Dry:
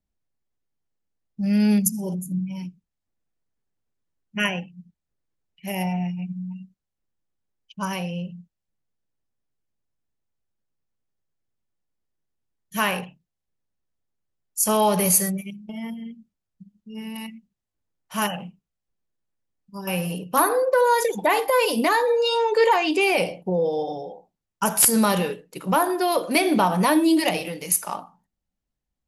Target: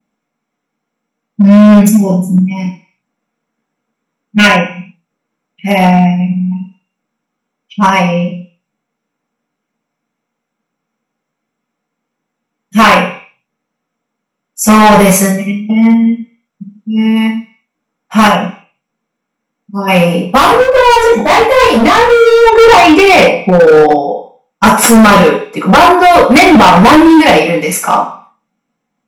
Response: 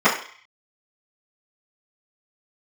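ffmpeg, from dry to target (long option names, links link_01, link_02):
-filter_complex "[1:a]atrim=start_sample=2205,asetrate=48510,aresample=44100[link_01];[0:a][link_01]afir=irnorm=-1:irlink=0,asoftclip=type=hard:threshold=-0.5dB,asplit=3[link_02][link_03][link_04];[link_02]afade=type=out:start_time=20.37:duration=0.02[link_05];[link_03]flanger=delay=18.5:depth=5.9:speed=2.3,afade=type=in:start_time=20.37:duration=0.02,afade=type=out:start_time=22.45:duration=0.02[link_06];[link_04]afade=type=in:start_time=22.45:duration=0.02[link_07];[link_05][link_06][link_07]amix=inputs=3:normalize=0,volume=-1dB"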